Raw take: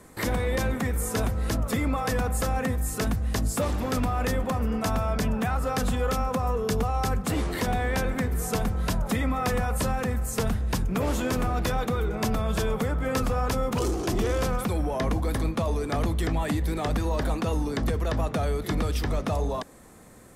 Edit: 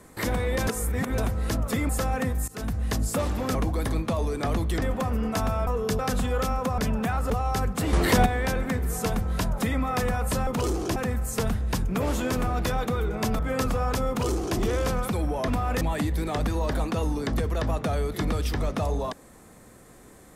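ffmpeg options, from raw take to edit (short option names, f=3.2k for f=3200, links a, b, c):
-filter_complex "[0:a]asplit=18[a][b][c][d][e][f][g][h][i][j][k][l][m][n][o][p][q][r];[a]atrim=end=0.672[s];[b]atrim=start=0.668:end=1.182,asetpts=PTS-STARTPTS,areverse[t];[c]atrim=start=1.178:end=1.892[u];[d]atrim=start=2.318:end=2.91,asetpts=PTS-STARTPTS,afade=t=out:st=0.588:d=0.004:c=hsin:silence=0.1[v];[e]atrim=start=2.91:end=3.982,asetpts=PTS-STARTPTS,afade=t=in:d=0.31:silence=0.1[w];[f]atrim=start=15.038:end=16.312[x];[g]atrim=start=4.308:end=5.162[y];[h]atrim=start=6.468:end=6.792[z];[i]atrim=start=5.678:end=6.472[aa];[j]atrim=start=5.158:end=5.682[ab];[k]atrim=start=6.788:end=7.422[ac];[l]atrim=start=7.418:end=7.752,asetpts=PTS-STARTPTS,volume=7.5dB[ad];[m]atrim=start=7.748:end=9.962[ae];[n]atrim=start=13.648:end=14.142[af];[o]atrim=start=9.958:end=12.392[ag];[p]atrim=start=12.948:end=15.042[ah];[q]atrim=start=3.978:end=4.312[ai];[r]atrim=start=16.308[aj];[s][t]acrossfade=d=0.004:c1=hsin:c2=hsin[ak];[ak][u]acrossfade=d=0.004:c1=hsin:c2=hsin[al];[v][w]concat=n=2:v=0:a=1[am];[al][am]acrossfade=d=0.004:c1=hsin:c2=hsin[an];[an][x]acrossfade=d=0.004:c1=hsin:c2=hsin[ao];[ao][y]acrossfade=d=0.004:c1=hsin:c2=hsin[ap];[ap][z]acrossfade=d=0.004:c1=hsin:c2=hsin[aq];[aq][aa]acrossfade=d=0.004:c1=hsin:c2=hsin[ar];[ar][ab]acrossfade=d=0.004:c1=hsin:c2=hsin[as];[as][ac]acrossfade=d=0.004:c1=hsin:c2=hsin[at];[at][ad]acrossfade=d=0.004:c1=hsin:c2=hsin[au];[au][ae]acrossfade=d=0.004:c1=hsin:c2=hsin[av];[av][af]acrossfade=d=0.004:c1=hsin:c2=hsin[aw];[aw][ag]acrossfade=d=0.004:c1=hsin:c2=hsin[ax];[ax][ah]acrossfade=d=0.004:c1=hsin:c2=hsin[ay];[ay][ai]acrossfade=d=0.004:c1=hsin:c2=hsin[az];[az][aj]acrossfade=d=0.004:c1=hsin:c2=hsin"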